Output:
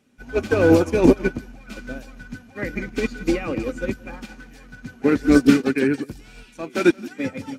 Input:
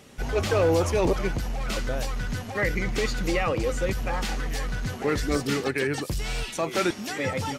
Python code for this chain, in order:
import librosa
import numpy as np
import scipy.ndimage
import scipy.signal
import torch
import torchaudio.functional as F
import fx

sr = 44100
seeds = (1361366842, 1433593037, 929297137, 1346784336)

p1 = fx.dynamic_eq(x, sr, hz=330.0, q=1.1, threshold_db=-35.0, ratio=4.0, max_db=5)
p2 = fx.small_body(p1, sr, hz=(250.0, 1500.0, 2400.0), ring_ms=40, db=12)
p3 = p2 + fx.echo_single(p2, sr, ms=174, db=-12.5, dry=0)
p4 = fx.upward_expand(p3, sr, threshold_db=-27.0, expansion=2.5)
y = p4 * 10.0 ** (4.5 / 20.0)